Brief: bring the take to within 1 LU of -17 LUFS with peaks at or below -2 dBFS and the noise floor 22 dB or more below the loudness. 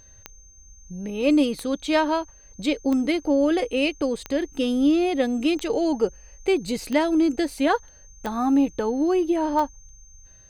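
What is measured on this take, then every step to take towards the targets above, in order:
clicks found 8; steady tone 6.3 kHz; tone level -50 dBFS; loudness -23.5 LUFS; peak level -7.5 dBFS; loudness target -17.0 LUFS
-> de-click; band-stop 6.3 kHz, Q 30; trim +6.5 dB; peak limiter -2 dBFS

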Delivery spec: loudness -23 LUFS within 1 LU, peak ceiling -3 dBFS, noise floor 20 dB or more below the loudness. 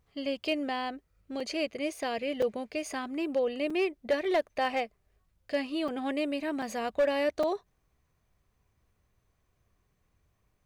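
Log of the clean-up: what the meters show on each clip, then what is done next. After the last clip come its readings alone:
clipped samples 0.3%; clipping level -20.5 dBFS; dropouts 6; longest dropout 4.1 ms; loudness -31.5 LUFS; peak level -20.5 dBFS; loudness target -23.0 LUFS
-> clip repair -20.5 dBFS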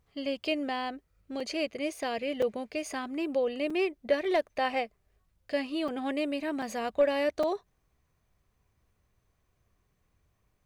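clipped samples 0.0%; dropouts 6; longest dropout 4.1 ms
-> interpolate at 1.40/2.42/3.70/5.88/6.62/7.43 s, 4.1 ms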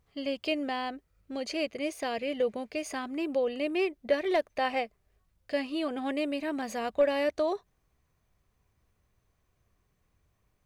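dropouts 0; loudness -31.5 LUFS; peak level -14.5 dBFS; loudness target -23.0 LUFS
-> trim +8.5 dB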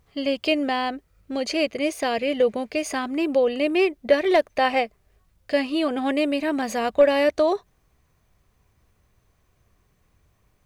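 loudness -23.0 LUFS; peak level -6.0 dBFS; noise floor -66 dBFS

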